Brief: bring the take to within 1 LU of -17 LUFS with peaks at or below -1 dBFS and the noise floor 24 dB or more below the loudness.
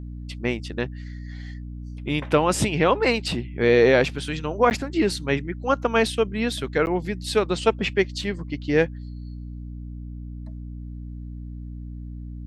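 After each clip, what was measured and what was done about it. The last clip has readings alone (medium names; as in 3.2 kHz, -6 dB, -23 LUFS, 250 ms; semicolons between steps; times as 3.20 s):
dropouts 2; longest dropout 9.9 ms; hum 60 Hz; highest harmonic 300 Hz; hum level -32 dBFS; loudness -23.0 LUFS; peak level -4.0 dBFS; loudness target -17.0 LUFS
-> interpolate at 4.70/6.86 s, 9.9 ms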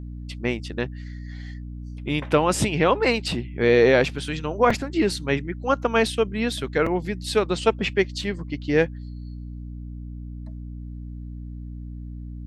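dropouts 0; hum 60 Hz; highest harmonic 300 Hz; hum level -32 dBFS
-> de-hum 60 Hz, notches 5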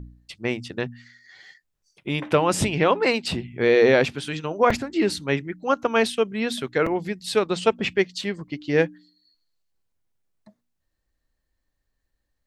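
hum not found; loudness -23.0 LUFS; peak level -4.5 dBFS; loudness target -17.0 LUFS
-> trim +6 dB; peak limiter -1 dBFS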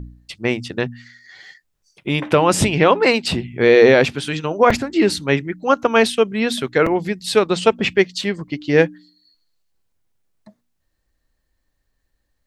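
loudness -17.5 LUFS; peak level -1.0 dBFS; noise floor -72 dBFS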